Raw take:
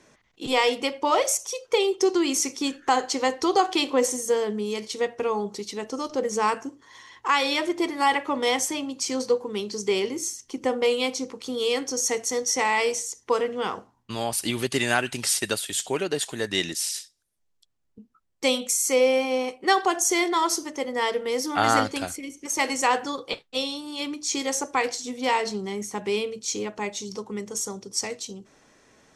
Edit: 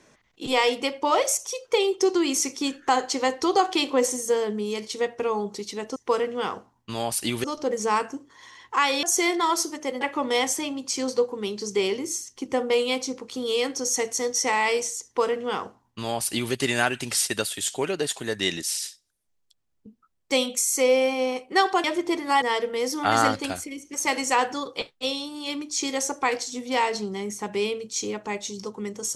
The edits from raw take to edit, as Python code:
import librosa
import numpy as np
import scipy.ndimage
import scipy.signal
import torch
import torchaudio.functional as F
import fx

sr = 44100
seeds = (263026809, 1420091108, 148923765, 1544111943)

y = fx.edit(x, sr, fx.swap(start_s=7.55, length_s=0.58, other_s=19.96, other_length_s=0.98),
    fx.duplicate(start_s=13.17, length_s=1.48, to_s=5.96), tone=tone)